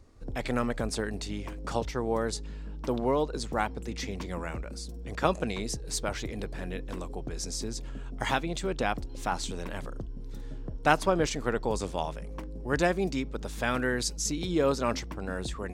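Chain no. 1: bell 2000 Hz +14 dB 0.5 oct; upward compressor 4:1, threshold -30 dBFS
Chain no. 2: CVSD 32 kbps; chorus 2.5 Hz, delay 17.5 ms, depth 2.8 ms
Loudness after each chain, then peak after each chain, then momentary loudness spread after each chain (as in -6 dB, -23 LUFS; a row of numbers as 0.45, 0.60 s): -29.5, -35.5 LUFS; -2.0, -13.5 dBFS; 12, 11 LU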